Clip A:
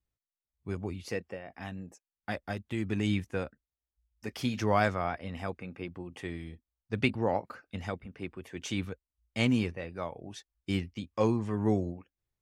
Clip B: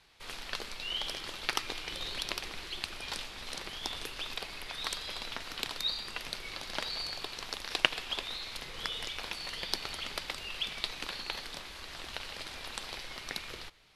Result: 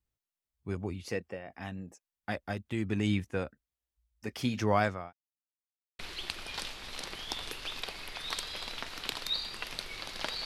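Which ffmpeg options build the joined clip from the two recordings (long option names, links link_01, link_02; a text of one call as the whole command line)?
ffmpeg -i cue0.wav -i cue1.wav -filter_complex "[0:a]apad=whole_dur=10.45,atrim=end=10.45,asplit=2[link_01][link_02];[link_01]atrim=end=5.13,asetpts=PTS-STARTPTS,afade=type=out:start_time=4.63:duration=0.5:curve=qsin[link_03];[link_02]atrim=start=5.13:end=5.99,asetpts=PTS-STARTPTS,volume=0[link_04];[1:a]atrim=start=2.53:end=6.99,asetpts=PTS-STARTPTS,afade=type=in:duration=0.004:curve=hsin[link_05];[link_03][link_04][link_05]concat=n=3:v=0:a=1" out.wav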